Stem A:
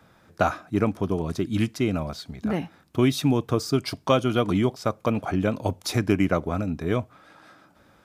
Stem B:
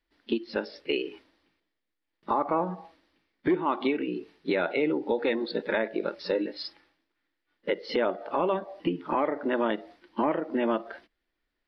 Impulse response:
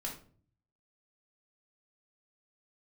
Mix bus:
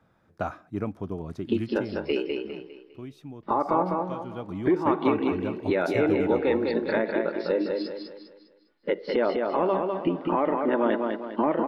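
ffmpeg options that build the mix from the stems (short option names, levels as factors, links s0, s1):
-filter_complex "[0:a]volume=1.5,afade=t=out:st=1.49:d=0.8:silence=0.237137,afade=t=in:st=4.11:d=0.7:silence=0.281838,afade=t=out:st=6.26:d=0.6:silence=0.266073[s0];[1:a]adelay=1200,volume=1.33,asplit=2[s1][s2];[s2]volume=0.631,aecho=0:1:202|404|606|808|1010:1|0.39|0.152|0.0593|0.0231[s3];[s0][s1][s3]amix=inputs=3:normalize=0,highshelf=f=2600:g=-11"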